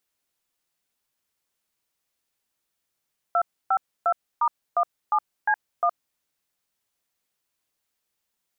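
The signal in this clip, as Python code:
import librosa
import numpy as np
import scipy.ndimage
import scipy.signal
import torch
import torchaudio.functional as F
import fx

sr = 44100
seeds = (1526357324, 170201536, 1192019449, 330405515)

y = fx.dtmf(sr, digits='252*17C1', tone_ms=67, gap_ms=287, level_db=-20.5)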